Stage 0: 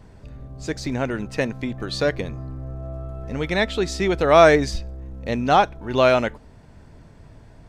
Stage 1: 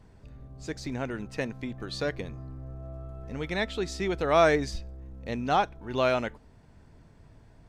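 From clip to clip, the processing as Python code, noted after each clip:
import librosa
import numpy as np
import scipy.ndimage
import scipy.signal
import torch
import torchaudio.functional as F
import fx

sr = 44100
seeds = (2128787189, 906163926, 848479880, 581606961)

y = fx.peak_eq(x, sr, hz=580.0, db=-2.5, octaves=0.24)
y = F.gain(torch.from_numpy(y), -8.0).numpy()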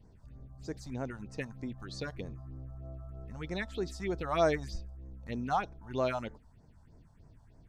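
y = fx.phaser_stages(x, sr, stages=4, low_hz=350.0, high_hz=3200.0, hz=3.2, feedback_pct=25)
y = F.gain(torch.from_numpy(y), -4.5).numpy()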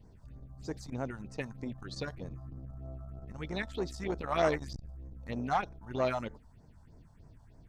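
y = fx.transformer_sat(x, sr, knee_hz=790.0)
y = F.gain(torch.from_numpy(y), 2.0).numpy()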